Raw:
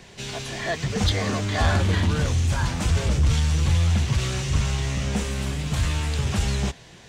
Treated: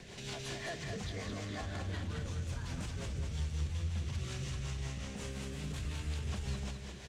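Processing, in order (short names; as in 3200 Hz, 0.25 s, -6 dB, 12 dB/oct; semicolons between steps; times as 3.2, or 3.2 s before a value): compressor, threshold -33 dBFS, peak gain reduction 16 dB; limiter -30 dBFS, peak gain reduction 6 dB; rotary speaker horn 5.5 Hz; on a send: feedback echo 0.212 s, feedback 42%, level -5.5 dB; on the sum: gain -1.5 dB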